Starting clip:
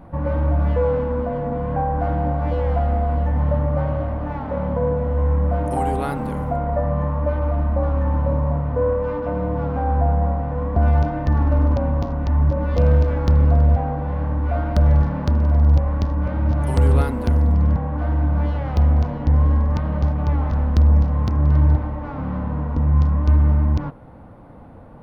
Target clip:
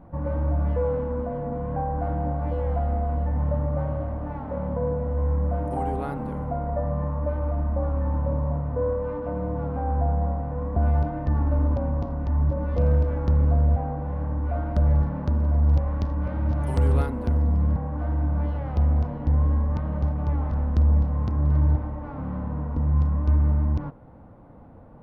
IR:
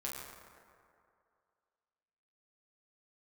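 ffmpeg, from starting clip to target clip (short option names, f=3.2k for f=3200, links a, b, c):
-af "asetnsamples=n=441:p=0,asendcmd='15.68 highshelf g -3;17.06 highshelf g -9.5',highshelf=f=2.2k:g=-11.5,volume=-5dB"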